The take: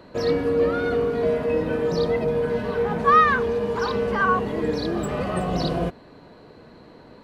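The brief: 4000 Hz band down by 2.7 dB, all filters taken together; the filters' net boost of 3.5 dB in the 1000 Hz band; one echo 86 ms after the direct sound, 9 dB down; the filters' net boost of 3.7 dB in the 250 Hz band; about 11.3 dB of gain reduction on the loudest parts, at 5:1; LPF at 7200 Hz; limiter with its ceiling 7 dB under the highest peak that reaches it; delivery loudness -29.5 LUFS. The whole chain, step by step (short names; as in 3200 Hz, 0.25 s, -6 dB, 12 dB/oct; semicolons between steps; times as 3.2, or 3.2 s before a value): LPF 7200 Hz; bell 250 Hz +4.5 dB; bell 1000 Hz +4.5 dB; bell 4000 Hz -3 dB; compressor 5:1, threshold -22 dBFS; limiter -20 dBFS; echo 86 ms -9 dB; gain -1.5 dB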